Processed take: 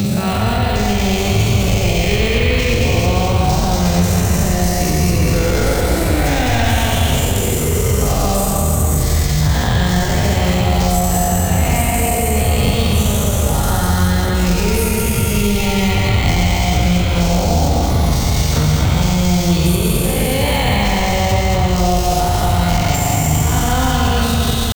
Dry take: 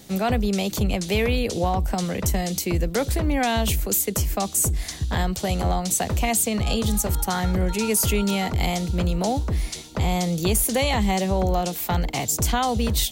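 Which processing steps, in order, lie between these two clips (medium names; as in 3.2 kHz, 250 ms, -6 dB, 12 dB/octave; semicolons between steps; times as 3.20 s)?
every event in the spectrogram widened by 240 ms; peaking EQ 99 Hz +10 dB 1.2 oct; peak limiter -11 dBFS, peak gain reduction 11.5 dB; level rider gain up to 3 dB; thinning echo 109 ms, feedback 45%, high-pass 580 Hz, level -4 dB; tempo 0.53×; careless resampling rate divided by 2×, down filtered, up hold; reverberation RT60 2.8 s, pre-delay 39 ms, DRR 0 dB; three bands compressed up and down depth 70%; trim -2 dB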